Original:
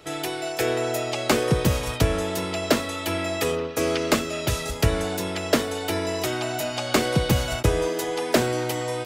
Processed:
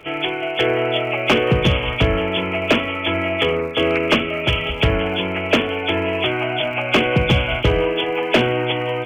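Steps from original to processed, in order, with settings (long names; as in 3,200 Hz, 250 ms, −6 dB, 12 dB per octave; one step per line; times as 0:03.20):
hearing-aid frequency compression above 2,100 Hz 4 to 1
mains-hum notches 50/100/150/200/250/300 Hz
in parallel at −4.5 dB: wave folding −14.5 dBFS
on the sum: surface crackle 90 per second −39 dBFS
level +1.5 dB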